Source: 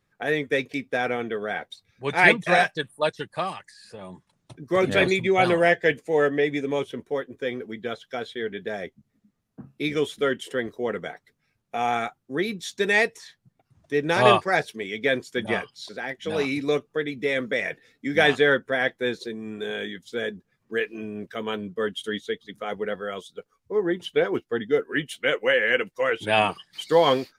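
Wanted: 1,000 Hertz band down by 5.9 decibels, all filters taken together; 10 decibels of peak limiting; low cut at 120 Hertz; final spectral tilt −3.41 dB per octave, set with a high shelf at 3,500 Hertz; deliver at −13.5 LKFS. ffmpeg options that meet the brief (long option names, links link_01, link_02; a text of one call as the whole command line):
ffmpeg -i in.wav -af "highpass=120,equalizer=frequency=1000:width_type=o:gain=-8.5,highshelf=frequency=3500:gain=-7,volume=16dB,alimiter=limit=0dB:level=0:latency=1" out.wav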